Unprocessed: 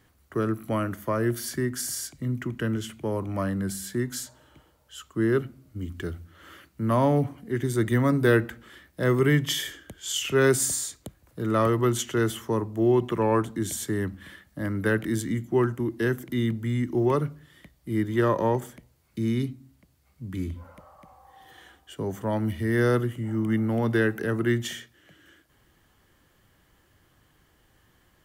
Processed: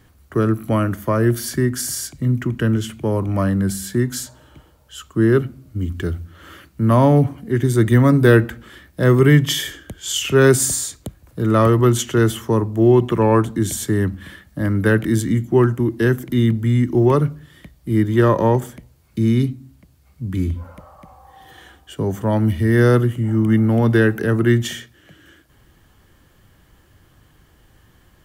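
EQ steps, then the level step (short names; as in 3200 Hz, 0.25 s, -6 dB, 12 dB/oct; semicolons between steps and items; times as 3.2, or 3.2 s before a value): low shelf 190 Hz +6.5 dB; notch 2000 Hz, Q 28; +6.5 dB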